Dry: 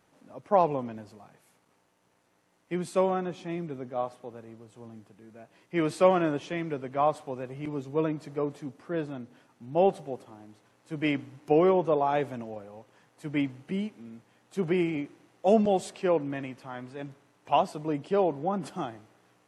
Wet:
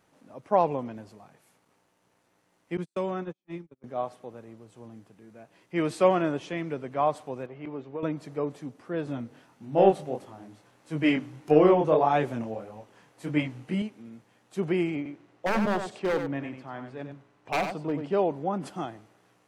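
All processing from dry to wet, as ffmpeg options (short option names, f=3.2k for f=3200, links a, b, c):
-filter_complex "[0:a]asettb=1/sr,asplit=3[a][b][c];[a]atrim=end=2.774[d];[b]atrim=start=2.77:end=3.84,asetpts=PTS-STARTPTS,afade=t=in:d=0.004:c=qsin,afade=t=out:st=1.066:d=0.004:c=qsin,agate=range=-44dB:threshold=-33dB:ratio=16:release=100:detection=peak,bandreject=f=700:w=5.9,acrossover=split=180|3000[e][f][g];[f]acompressor=threshold=-30dB:ratio=2:attack=3.2:release=140:knee=2.83:detection=peak[h];[e][h][g]amix=inputs=3:normalize=0[i];[c]atrim=start=3.836[j];[d][i]acrossfade=d=0.004:c1=hsin:c2=qsin[k];[k][j]acrossfade=d=0.004:c1=qsin:c2=hsin,asettb=1/sr,asplit=3[l][m][n];[l]atrim=end=7.464[o];[m]atrim=start=7.46:end=8.03,asetpts=PTS-STARTPTS,afade=t=in:d=0.004:c=qsin,afade=t=out:st=0.566:d=0.004:c=qsin,lowpass=5.1k,bass=f=250:g=-8,treble=f=4k:g=-14,acompressor=threshold=-30dB:ratio=5:attack=3.2:release=140:knee=1:detection=peak[p];[n]atrim=start=8.026[q];[o][p]acrossfade=d=0.004:c1=hsin:c2=qsin[r];[r][q]acrossfade=d=0.004:c1=qsin:c2=hsin,asettb=1/sr,asplit=3[s][t][u];[s]atrim=end=9.054[v];[t]atrim=start=9.05:end=13.82,asetpts=PTS-STARTPTS,afade=t=in:d=0.004:c=qsin,afade=t=out:st=4.766:d=0.004:c=qsin,acontrast=63,flanger=delay=19.5:depth=8:speed=1.6[w];[u]atrim=start=13.816[x];[v][w]acrossfade=d=0.004:c1=hsin:c2=qsin[y];[y][x]acrossfade=d=0.004:c1=qsin:c2=hsin,asettb=1/sr,asplit=3[z][aa][ab];[z]atrim=end=14.964[ac];[aa]atrim=start=14.96:end=18.13,asetpts=PTS-STARTPTS,afade=t=in:d=0.004:c=qsin,afade=t=out:st=3.166:d=0.004:c=qsin,aemphasis=mode=reproduction:type=50fm,aeval=exprs='0.0944*(abs(mod(val(0)/0.0944+3,4)-2)-1)':c=same,aecho=1:1:93:0.422,atrim=end_sample=139797[ad];[ab]atrim=start=18.126[ae];[ac][ad]acrossfade=d=0.004:c1=hsin:c2=qsin[af];[af][ae]acrossfade=d=0.004:c1=qsin:c2=hsin"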